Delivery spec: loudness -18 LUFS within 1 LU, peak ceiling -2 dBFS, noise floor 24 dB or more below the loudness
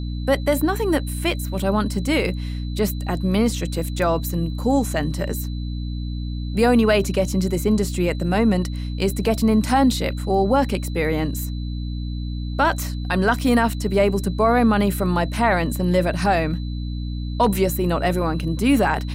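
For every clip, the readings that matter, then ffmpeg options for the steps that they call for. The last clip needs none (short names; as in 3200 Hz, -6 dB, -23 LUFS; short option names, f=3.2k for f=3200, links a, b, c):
hum 60 Hz; harmonics up to 300 Hz; hum level -24 dBFS; steady tone 4000 Hz; tone level -44 dBFS; loudness -21.5 LUFS; peak -6.5 dBFS; loudness target -18.0 LUFS
-> -af "bandreject=f=60:t=h:w=4,bandreject=f=120:t=h:w=4,bandreject=f=180:t=h:w=4,bandreject=f=240:t=h:w=4,bandreject=f=300:t=h:w=4"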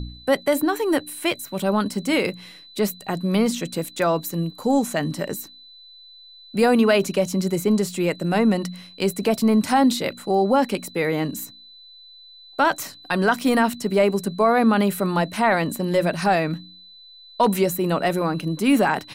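hum none; steady tone 4000 Hz; tone level -44 dBFS
-> -af "bandreject=f=4k:w=30"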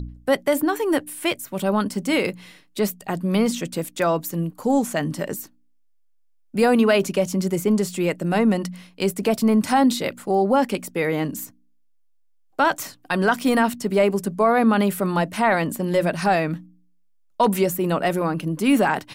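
steady tone none; loudness -21.5 LUFS; peak -7.0 dBFS; loudness target -18.0 LUFS
-> -af "volume=3.5dB"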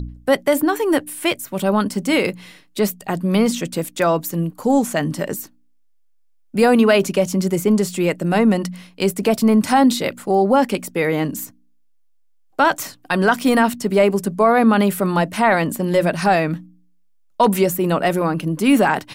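loudness -18.0 LUFS; peak -3.5 dBFS; noise floor -55 dBFS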